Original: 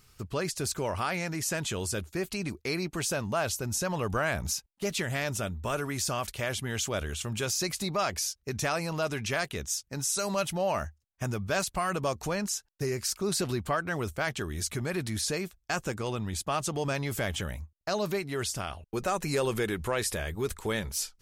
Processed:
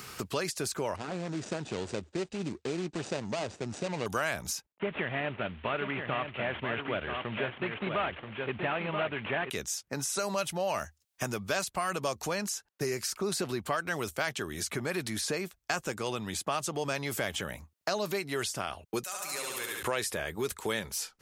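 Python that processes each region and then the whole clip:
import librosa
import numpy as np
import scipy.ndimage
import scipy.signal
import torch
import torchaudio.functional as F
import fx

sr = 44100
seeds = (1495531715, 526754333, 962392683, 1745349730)

y = fx.chain(x, sr, fx.median_filter(points=41),
    fx.steep_lowpass(hz=8700.0, slope=48), at=(0.96, 4.06))
y = fx.chain(y, sr, fx.cvsd(bps=16000),
    fx.echo_single(ms=980, db=-7.0), at=(4.72, 9.5))
y = fx.chain(y, sr, fx.pre_emphasis(coefficient=0.97),
    fx.room_flutter(wall_m=12.0, rt60_s=1.4), at=(19.03, 19.83))
y = fx.highpass(y, sr, hz=280.0, slope=6)
y = fx.band_squash(y, sr, depth_pct=70)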